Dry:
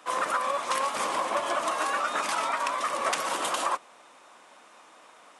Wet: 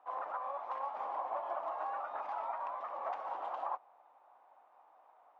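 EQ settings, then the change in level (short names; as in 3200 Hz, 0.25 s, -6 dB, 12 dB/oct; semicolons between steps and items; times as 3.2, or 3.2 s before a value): band-pass 790 Hz, Q 4.8; air absorption 150 m; -1.5 dB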